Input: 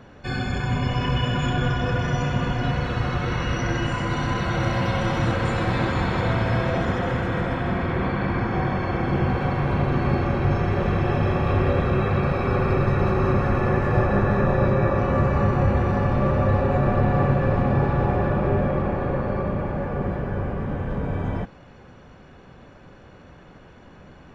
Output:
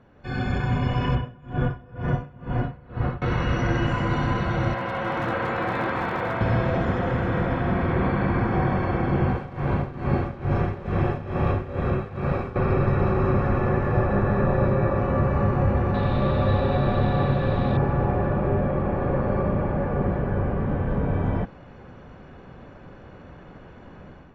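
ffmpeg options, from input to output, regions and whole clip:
-filter_complex "[0:a]asettb=1/sr,asplit=3[s0][s1][s2];[s0]atrim=end=1.154[s3];[s1]atrim=start=1.15:end=3.22,asetpts=PTS-STARTPTS,afade=t=in:d=0.004:c=qsin,afade=t=out:st=2.066:d=0.004:c=qsin,lowpass=f=1300:p=1,aeval=exprs='val(0)*pow(10,-26*(0.5-0.5*cos(2*PI*2.1*n/s))/20)':c=same[s4];[s2]atrim=start=3.216[s5];[s3][s4]acrossfade=d=0.004:c1=hsin:c2=qsin[s6];[s6][s5]acrossfade=d=0.004:c1=qsin:c2=hsin,asettb=1/sr,asplit=3[s7][s8][s9];[s7]atrim=end=4.744[s10];[s8]atrim=start=4.74:end=6.41,asetpts=PTS-STARTPTS,afade=t=in:d=0.004:c=qsin,afade=t=out:st=1.666:d=0.004:c=qsin,lowpass=2000,asoftclip=type=hard:threshold=0.168,aemphasis=mode=production:type=riaa[s11];[s9]atrim=start=6.406[s12];[s10][s11]acrossfade=d=0.004:c1=hsin:c2=qsin[s13];[s13][s12]acrossfade=d=0.004:c1=qsin:c2=hsin,asettb=1/sr,asplit=3[s14][s15][s16];[s14]atrim=end=9.284[s17];[s15]atrim=start=9.28:end=12.56,asetpts=PTS-STARTPTS,afade=t=in:d=0.004:c=qsin,afade=t=out:st=3.276:d=0.004:c=qsin,tremolo=f=2.3:d=0.81,aeval=exprs='sgn(val(0))*max(abs(val(0))-0.00398,0)':c=same[s18];[s16]atrim=start=12.556[s19];[s17][s18]acrossfade=d=0.004:c1=hsin:c2=qsin[s20];[s20][s19]acrossfade=d=0.004:c1=qsin:c2=hsin,asettb=1/sr,asplit=3[s21][s22][s23];[s21]atrim=end=15.944[s24];[s22]atrim=start=15.94:end=17.77,asetpts=PTS-STARTPTS,afade=t=in:d=0.004:c=qsin,afade=t=out:st=1.826:d=0.004:c=qsin,acrusher=bits=6:mix=0:aa=0.5,lowpass=f=3800:t=q:w=14[s25];[s23]atrim=start=17.766[s26];[s24][s25]acrossfade=d=0.004:c1=hsin:c2=qsin[s27];[s27][s26]acrossfade=d=0.004:c1=qsin:c2=hsin,dynaudnorm=f=130:g=5:m=3.76,lowpass=f=2000:p=1,volume=0.376"

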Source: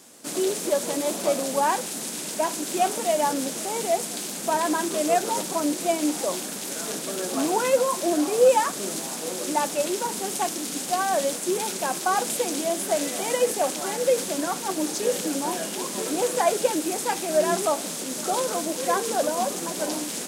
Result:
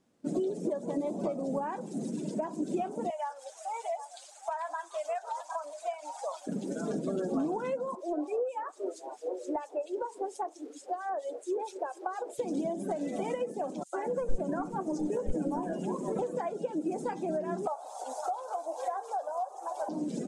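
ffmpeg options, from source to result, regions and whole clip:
-filter_complex "[0:a]asettb=1/sr,asplit=3[s0][s1][s2];[s0]atrim=end=3.104[s3];[s1]atrim=start=3.1:end=6.47,asetpts=PTS-STARTPTS,afade=t=in:d=0.004:c=qsin,afade=t=out:st=3.366:d=0.004:c=qsin,highpass=f=710:w=0.5412,highpass=f=710:w=1.3066,aecho=1:1:756:0.237,atrim=end_sample=148617[s4];[s2]atrim=start=6.466[s5];[s3][s4]acrossfade=d=0.004:c1=hsin:c2=qsin[s6];[s6][s5]acrossfade=d=0.004:c1=qsin:c2=hsin,asettb=1/sr,asplit=3[s7][s8][s9];[s7]atrim=end=7.954[s10];[s8]atrim=start=7.95:end=12.39,asetpts=PTS-STARTPTS,afade=t=in:d=0.004:c=qsin,afade=t=out:st=4.436:d=0.004:c=qsin,highpass=f=370:w=0.5412,highpass=f=370:w=1.3066,acrossover=split=1900[s11][s12];[s11]aeval=exprs='val(0)*(1-0.7/2+0.7/2*cos(2*PI*4.4*n/s))':c=same[s13];[s12]aeval=exprs='val(0)*(1-0.7/2-0.7/2*cos(2*PI*4.4*n/s))':c=same[s14];[s13][s14]amix=inputs=2:normalize=0[s15];[s9]atrim=start=12.386[s16];[s10][s15]acrossfade=d=0.004:c1=hsin:c2=qsin[s17];[s17][s16]acrossfade=d=0.004:c1=qsin:c2=hsin,asettb=1/sr,asplit=3[s18][s19][s20];[s18]atrim=end=13.834[s21];[s19]atrim=start=13.83:end=16.19,asetpts=PTS-STARTPTS,afade=t=in:d=0.004:c=qsin,afade=t=out:st=2.356:d=0.004:c=qsin,aeval=exprs='clip(val(0),-1,0.0794)':c=same,acrossover=split=300|3800[s22][s23][s24];[s23]adelay=100[s25];[s22]adelay=210[s26];[s26][s25][s24]amix=inputs=3:normalize=0,atrim=end_sample=104076[s27];[s20]atrim=start=16.186[s28];[s21][s27]acrossfade=d=0.004:c1=hsin:c2=qsin[s29];[s29][s28]acrossfade=d=0.004:c1=qsin:c2=hsin,asettb=1/sr,asplit=3[s30][s31][s32];[s30]atrim=end=17.674[s33];[s31]atrim=start=17.67:end=19.89,asetpts=PTS-STARTPTS,afade=t=in:d=0.004:c=qsin,afade=t=out:st=2.216:d=0.004:c=qsin,highpass=f=770:t=q:w=5.4,highshelf=f=7400:g=6,asplit=2[s34][s35];[s35]adelay=15,volume=0.224[s36];[s34][s36]amix=inputs=2:normalize=0,atrim=end_sample=97902[s37];[s32]atrim=start=19.886[s38];[s33][s37]acrossfade=d=0.004:c1=hsin:c2=qsin[s39];[s39][s38]acrossfade=d=0.004:c1=qsin:c2=hsin,afftdn=nr=21:nf=-33,acompressor=threshold=0.0251:ratio=16,aemphasis=mode=reproduction:type=riaa"

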